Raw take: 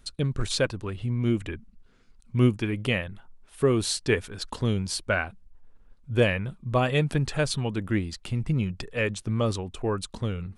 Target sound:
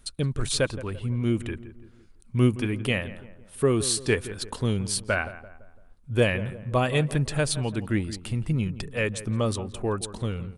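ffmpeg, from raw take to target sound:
-filter_complex "[0:a]equalizer=f=9.5k:t=o:w=0.43:g=8.5,asplit=2[a][b];[b]adelay=169,lowpass=f=1.6k:p=1,volume=-14dB,asplit=2[c][d];[d]adelay=169,lowpass=f=1.6k:p=1,volume=0.47,asplit=2[e][f];[f]adelay=169,lowpass=f=1.6k:p=1,volume=0.47,asplit=2[g][h];[h]adelay=169,lowpass=f=1.6k:p=1,volume=0.47[i];[c][e][g][i]amix=inputs=4:normalize=0[j];[a][j]amix=inputs=2:normalize=0"

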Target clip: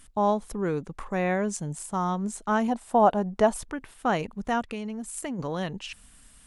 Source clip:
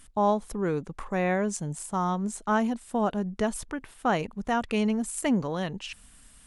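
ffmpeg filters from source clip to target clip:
-filter_complex "[0:a]asettb=1/sr,asplit=3[a][b][c];[a]atrim=end=2.684[d];[b]atrim=start=2.68:end=3.58,asetpts=PTS-STARTPTS,afade=t=in:d=0.004:c=qsin,afade=t=out:st=0.896:d=0.004:c=qsin,equalizer=f=770:w=1.1:g=11[e];[c]atrim=start=3.576[f];[d][e]acrossfade=d=0.004:c1=hsin:c2=qsin[g];[g][f]acrossfade=d=0.004:c1=qsin:c2=hsin,asplit=3[h][i][j];[h]afade=t=out:st=4.61:d=0.02[k];[i]acompressor=threshold=-32dB:ratio=5,afade=t=in:st=4.61:d=0.02,afade=t=out:st=5.38:d=0.02[l];[j]afade=t=in:st=5.38:d=0.02[m];[k][l][m]amix=inputs=3:normalize=0"

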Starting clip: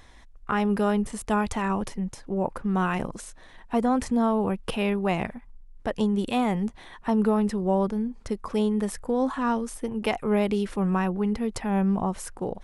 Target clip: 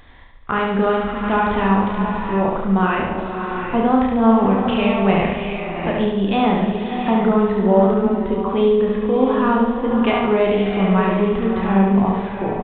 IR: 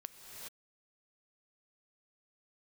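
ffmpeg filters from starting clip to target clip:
-filter_complex "[0:a]aecho=1:1:71|142|213|284|355|426|497:0.708|0.368|0.191|0.0995|0.0518|0.0269|0.014,asplit=2[a][b];[1:a]atrim=start_sample=2205,asetrate=25578,aresample=44100,adelay=31[c];[b][c]afir=irnorm=-1:irlink=0,volume=-1.5dB[d];[a][d]amix=inputs=2:normalize=0,aresample=8000,aresample=44100,volume=4.5dB"

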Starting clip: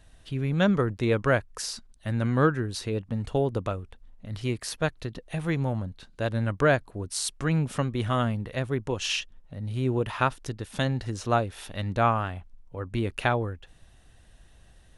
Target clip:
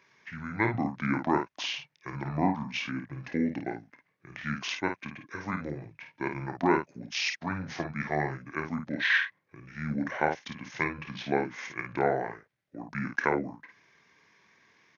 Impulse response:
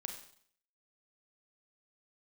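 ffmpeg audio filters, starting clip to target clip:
-af "asetrate=26222,aresample=44100,atempo=1.68179,highpass=f=140:w=0.5412,highpass=f=140:w=1.3066,equalizer=f=2k:t=o:w=1.2:g=11,aecho=1:1:28|53:0.251|0.473,volume=-4.5dB"

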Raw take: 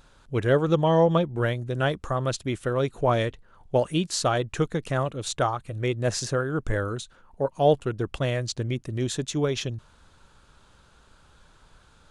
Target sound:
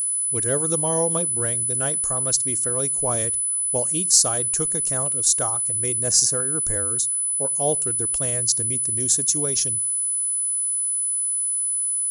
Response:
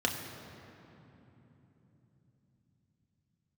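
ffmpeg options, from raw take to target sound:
-filter_complex "[0:a]asplit=2[a][b];[1:a]atrim=start_sample=2205,afade=t=out:st=0.16:d=0.01,atrim=end_sample=7497[c];[b][c]afir=irnorm=-1:irlink=0,volume=-25dB[d];[a][d]amix=inputs=2:normalize=0,aeval=exprs='val(0)+0.0112*sin(2*PI*10000*n/s)':c=same,aexciter=amount=11.2:drive=5.3:freq=5k,volume=-5.5dB"

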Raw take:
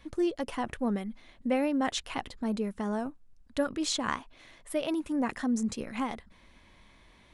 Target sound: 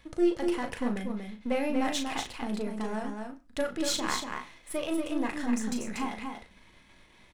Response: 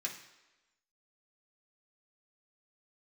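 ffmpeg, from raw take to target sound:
-filter_complex "[0:a]aeval=exprs='if(lt(val(0),0),0.447*val(0),val(0))':c=same,asplit=2[a][b];[b]adelay=37,volume=-7dB[c];[a][c]amix=inputs=2:normalize=0,aecho=1:1:238:0.562,asplit=2[d][e];[1:a]atrim=start_sample=2205,atrim=end_sample=6615[f];[e][f]afir=irnorm=-1:irlink=0,volume=-7.5dB[g];[d][g]amix=inputs=2:normalize=0"

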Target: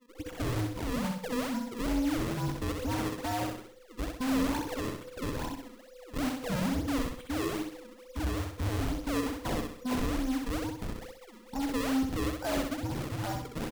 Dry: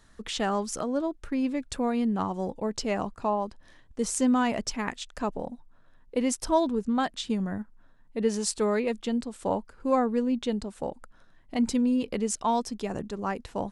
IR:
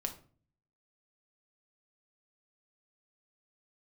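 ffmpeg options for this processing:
-filter_complex "[0:a]afftfilt=real='real(if(between(b,1,1008),(2*floor((b-1)/24)+1)*24-b,b),0)':imag='imag(if(between(b,1,1008),(2*floor((b-1)/24)+1)*24-b,b),0)*if(between(b,1,1008),-1,1)':win_size=2048:overlap=0.75,aemphasis=mode=reproduction:type=75kf,afftdn=nr=31:nf=-44,adynamicequalizer=threshold=0.00631:dfrequency=160:dqfactor=3.1:tfrequency=160:tqfactor=3.1:attack=5:release=100:ratio=0.375:range=2:mode=boostabove:tftype=bell,acrossover=split=230|1100[a][b][c];[c]acompressor=threshold=-49dB:ratio=10[d];[a][b][d]amix=inputs=3:normalize=0,aphaser=in_gain=1:out_gain=1:delay=2.3:decay=0.26:speed=0.32:type=sinusoidal,aresample=11025,asoftclip=type=tanh:threshold=-29dB,aresample=44100,acrusher=samples=34:mix=1:aa=0.000001:lfo=1:lforange=54.4:lforate=2.3,aecho=1:1:64|128|192|256|320:0.631|0.259|0.106|0.0435|0.0178"

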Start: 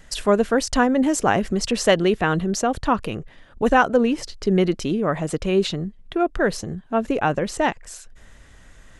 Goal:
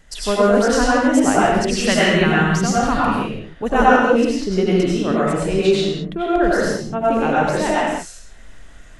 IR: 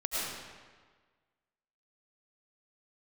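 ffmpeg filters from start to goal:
-filter_complex "[0:a]asettb=1/sr,asplit=3[a][b][c];[a]atrim=end=1.664[d];[b]atrim=start=1.66:end=3.03,asetpts=PTS-STARTPTS,afade=t=in:d=0.004:c=qsin,afade=t=out:st=1.366:d=0.004:c=qsin,equalizer=f=125:t=o:w=1:g=9,equalizer=f=500:t=o:w=1:g=-5,equalizer=f=2k:t=o:w=1:g=5[e];[c]atrim=start=3.026[f];[d][e]acrossfade=d=0.004:c1=hsin:c2=qsin[g];[g][f]acrossfade=d=0.004:c1=qsin:c2=hsin[h];[1:a]atrim=start_sample=2205,afade=t=out:st=0.42:d=0.01,atrim=end_sample=18963,asetrate=48510,aresample=44100[i];[h][i]afir=irnorm=-1:irlink=0,volume=-1.5dB"

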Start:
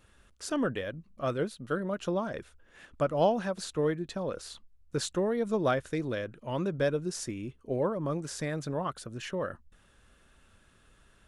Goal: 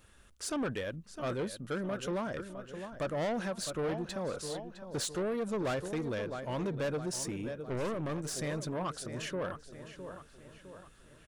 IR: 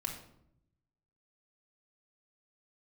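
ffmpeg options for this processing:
-filter_complex "[0:a]asplit=2[a][b];[b]adelay=659,lowpass=f=4.7k:p=1,volume=-12.5dB,asplit=2[c][d];[d]adelay=659,lowpass=f=4.7k:p=1,volume=0.49,asplit=2[e][f];[f]adelay=659,lowpass=f=4.7k:p=1,volume=0.49,asplit=2[g][h];[h]adelay=659,lowpass=f=4.7k:p=1,volume=0.49,asplit=2[i][j];[j]adelay=659,lowpass=f=4.7k:p=1,volume=0.49[k];[c][e][g][i][k]amix=inputs=5:normalize=0[l];[a][l]amix=inputs=2:normalize=0,asettb=1/sr,asplit=3[m][n][o];[m]atrim=end=7.694[p];[n]atrim=start=7.69:end=8.34,asetpts=PTS-STARTPTS,afade=t=in:d=0.004:c=qsin,afade=t=out:st=0.646:d=0.004:c=qsin,aeval=exprs='0.112*(cos(1*acos(clip(val(0)/0.112,-1,1)))-cos(1*PI/2))+0.0282*(cos(4*acos(clip(val(0)/0.112,-1,1)))-cos(4*PI/2))':c=same[q];[o]atrim=start=8.336[r];[p][q]acrossfade=d=0.004:c1=hsin:c2=qsin[s];[s][r]acrossfade=d=0.004:c1=qsin:c2=hsin,highshelf=f=6.5k:g=6,asoftclip=type=tanh:threshold=-29.5dB"

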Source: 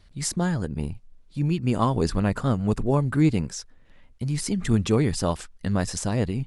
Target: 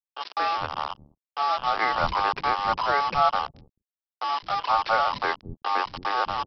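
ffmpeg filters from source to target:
-filter_complex "[0:a]aeval=exprs='val(0)*sin(2*PI*1000*n/s)':c=same,acontrast=54,aresample=11025,acrusher=bits=3:mix=0:aa=0.5,aresample=44100,acrossover=split=270[a][b];[a]adelay=210[c];[c][b]amix=inputs=2:normalize=0,volume=-4.5dB"

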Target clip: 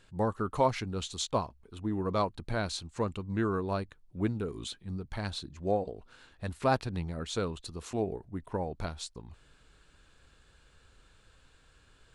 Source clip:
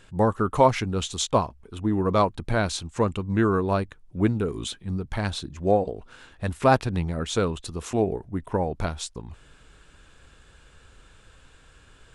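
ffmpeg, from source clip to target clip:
-af "equalizer=f=4.3k:t=o:w=0.26:g=6,volume=-8.5dB"

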